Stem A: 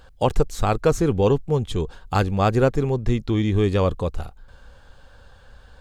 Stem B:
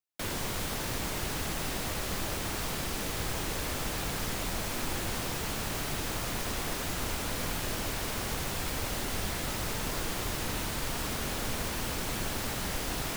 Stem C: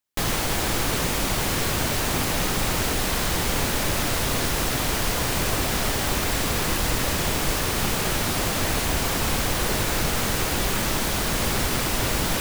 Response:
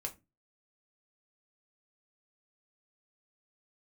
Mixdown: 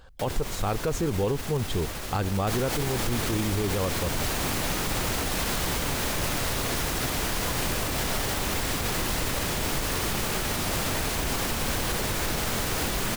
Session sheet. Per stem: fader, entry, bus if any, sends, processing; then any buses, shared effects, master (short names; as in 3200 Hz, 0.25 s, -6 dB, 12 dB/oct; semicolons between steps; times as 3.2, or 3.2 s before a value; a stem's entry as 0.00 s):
-2.5 dB, 0.00 s, no send, dry
+2.0 dB, 0.00 s, no send, limiter -27.5 dBFS, peak gain reduction 7 dB
-3.0 dB, 2.30 s, no send, dry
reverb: off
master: limiter -17.5 dBFS, peak gain reduction 10 dB